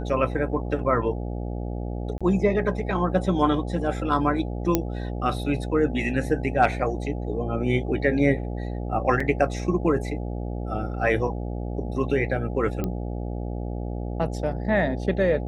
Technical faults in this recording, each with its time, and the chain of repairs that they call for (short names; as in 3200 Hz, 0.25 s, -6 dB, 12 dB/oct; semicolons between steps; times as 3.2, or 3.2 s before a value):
buzz 60 Hz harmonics 14 -30 dBFS
2.18–2.21 gap 26 ms
4.75 pop -6 dBFS
9.2 gap 4 ms
12.84 pop -15 dBFS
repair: de-click; de-hum 60 Hz, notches 14; interpolate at 2.18, 26 ms; interpolate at 9.2, 4 ms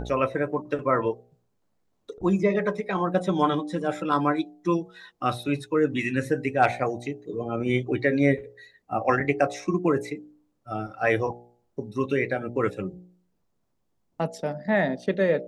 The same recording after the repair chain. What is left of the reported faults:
none